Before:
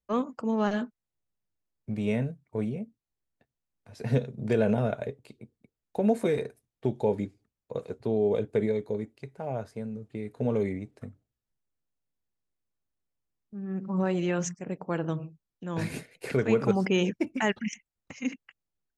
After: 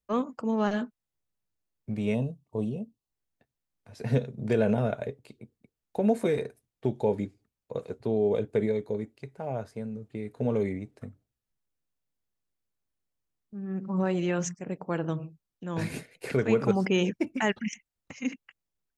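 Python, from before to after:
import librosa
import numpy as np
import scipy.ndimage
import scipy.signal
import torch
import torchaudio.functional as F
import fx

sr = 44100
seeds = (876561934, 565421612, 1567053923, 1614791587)

y = fx.spec_box(x, sr, start_s=2.14, length_s=0.95, low_hz=1200.0, high_hz=2500.0, gain_db=-20)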